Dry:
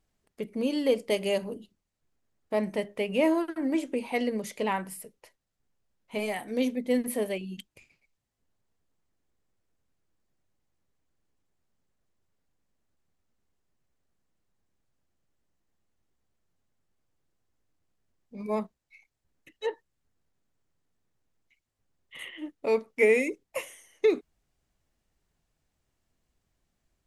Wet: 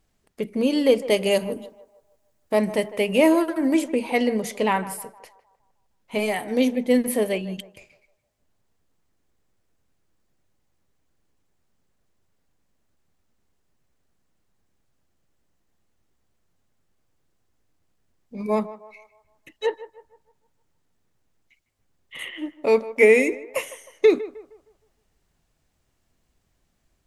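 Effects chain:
0:01.31–0:03.88: high-shelf EQ 7,100 Hz +9 dB
feedback echo with a band-pass in the loop 155 ms, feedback 47%, band-pass 830 Hz, level −14 dB
level +7 dB

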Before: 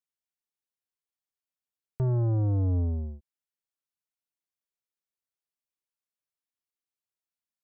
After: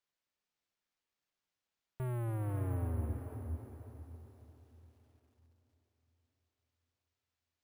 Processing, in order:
in parallel at +2.5 dB: brickwall limiter −33 dBFS, peak gain reduction 9.5 dB
on the sum: soft clipping −28.5 dBFS, distortion −15 dB
feedback delay with all-pass diffusion 514 ms, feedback 40%, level −6.5 dB
bad sample-rate conversion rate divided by 4×, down none, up hold
feedback echo at a low word length 274 ms, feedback 55%, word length 10 bits, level −13.5 dB
level −7 dB

